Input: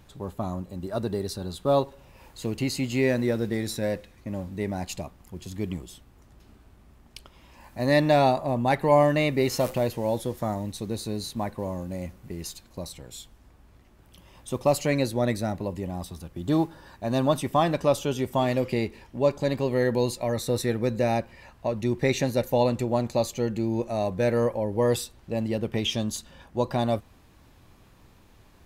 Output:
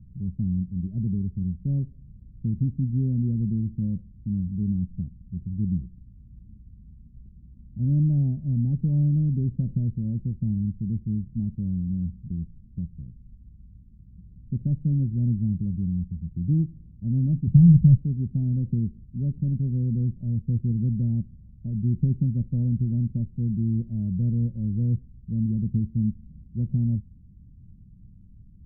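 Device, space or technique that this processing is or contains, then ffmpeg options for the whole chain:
the neighbour's flat through the wall: -filter_complex "[0:a]asettb=1/sr,asplit=3[s0][s1][s2];[s0]atrim=end=17.474[s3];[s1]atrim=start=17.47:end=17.97,asetpts=PTS-STARTPTS,afade=t=in:d=0.004:c=qsin,afade=t=out:st=0.496:d=0.004:c=qsin,lowshelf=f=200:t=q:w=1.5:g=9.5[s4];[s2]atrim=start=17.966[s5];[s3][s4]acrossfade=d=0.004:c1=hsin:c2=qsin[s6];[s6][s5]acrossfade=d=0.004:c1=qsin:c2=hsin,lowpass=f=180:w=0.5412,lowpass=f=180:w=1.3066,equalizer=f=200:t=o:w=0.57:g=5,volume=2.37"

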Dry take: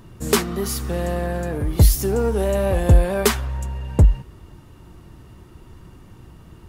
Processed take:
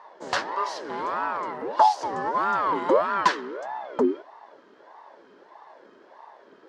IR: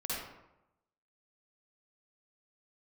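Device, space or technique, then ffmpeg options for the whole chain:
voice changer toy: -af "aeval=exprs='val(0)*sin(2*PI*560*n/s+560*0.45/1.6*sin(2*PI*1.6*n/s))':c=same,highpass=440,equalizer=f=500:t=q:w=4:g=-5,equalizer=f=730:t=q:w=4:g=-9,equalizer=f=1000:t=q:w=4:g=7,equalizer=f=1700:t=q:w=4:g=5,equalizer=f=2400:t=q:w=4:g=-7,equalizer=f=3600:t=q:w=4:g=-3,lowpass=f=5000:w=0.5412,lowpass=f=5000:w=1.3066"

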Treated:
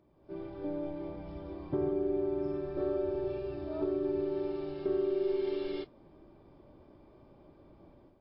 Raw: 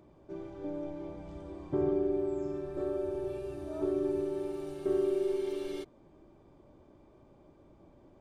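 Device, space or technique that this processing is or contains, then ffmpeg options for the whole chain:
low-bitrate web radio: -af "dynaudnorm=f=110:g=5:m=3.16,alimiter=limit=0.2:level=0:latency=1:release=448,volume=0.398" -ar 12000 -c:a libmp3lame -b:a 32k

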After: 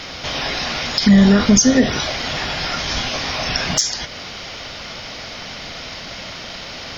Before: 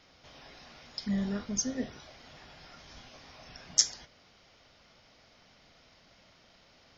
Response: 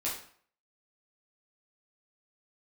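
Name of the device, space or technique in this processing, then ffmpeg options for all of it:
mastering chain: -af "equalizer=f=3300:t=o:w=2.4:g=4,acompressor=threshold=0.02:ratio=3,asoftclip=type=tanh:threshold=0.119,alimiter=level_in=31.6:limit=0.891:release=50:level=0:latency=1,volume=0.708"

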